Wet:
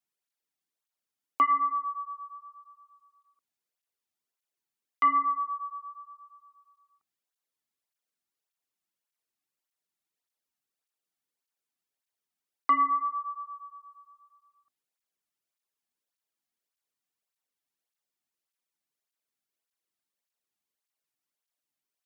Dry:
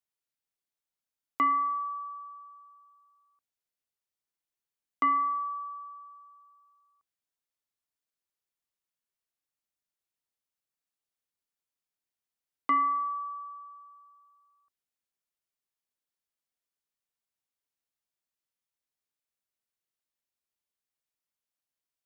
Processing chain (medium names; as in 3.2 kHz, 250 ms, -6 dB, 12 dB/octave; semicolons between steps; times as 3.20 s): cancelling through-zero flanger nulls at 1.7 Hz, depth 2.2 ms; trim +4.5 dB